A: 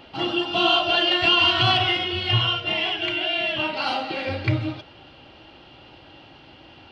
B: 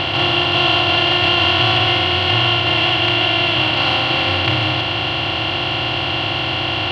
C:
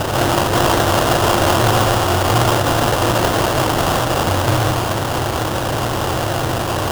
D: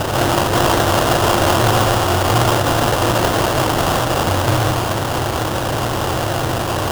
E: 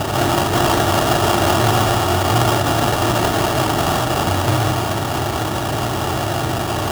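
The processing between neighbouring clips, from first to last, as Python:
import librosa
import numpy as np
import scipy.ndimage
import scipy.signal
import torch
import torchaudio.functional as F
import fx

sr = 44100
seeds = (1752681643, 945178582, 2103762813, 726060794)

y1 = fx.bin_compress(x, sr, power=0.2)
y1 = F.gain(torch.from_numpy(y1), -3.0).numpy()
y2 = fx.low_shelf(y1, sr, hz=78.0, db=11.0)
y2 = fx.sample_hold(y2, sr, seeds[0], rate_hz=2200.0, jitter_pct=20)
y3 = y2
y4 = fx.notch_comb(y3, sr, f0_hz=510.0)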